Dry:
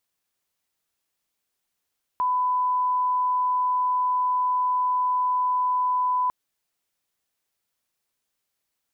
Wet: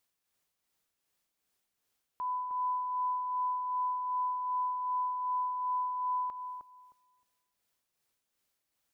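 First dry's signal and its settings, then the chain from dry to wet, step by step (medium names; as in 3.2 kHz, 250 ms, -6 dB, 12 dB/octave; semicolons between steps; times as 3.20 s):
line-up tone -20 dBFS 4.10 s
peak limiter -30 dBFS; tremolo 2.6 Hz, depth 45%; filtered feedback delay 310 ms, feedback 27%, low-pass 850 Hz, level -4 dB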